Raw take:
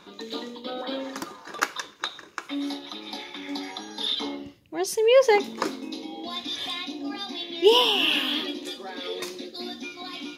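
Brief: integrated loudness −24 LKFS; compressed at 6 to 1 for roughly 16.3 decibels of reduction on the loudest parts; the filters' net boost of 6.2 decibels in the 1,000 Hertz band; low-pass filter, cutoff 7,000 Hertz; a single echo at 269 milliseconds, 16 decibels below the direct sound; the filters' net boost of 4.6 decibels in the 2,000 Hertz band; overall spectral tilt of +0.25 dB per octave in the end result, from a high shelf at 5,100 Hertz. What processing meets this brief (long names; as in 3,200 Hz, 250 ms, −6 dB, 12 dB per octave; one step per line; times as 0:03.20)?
low-pass filter 7,000 Hz
parametric band 1,000 Hz +6.5 dB
parametric band 2,000 Hz +5 dB
high-shelf EQ 5,100 Hz −3.5 dB
downward compressor 6 to 1, threshold −29 dBFS
single-tap delay 269 ms −16 dB
level +9 dB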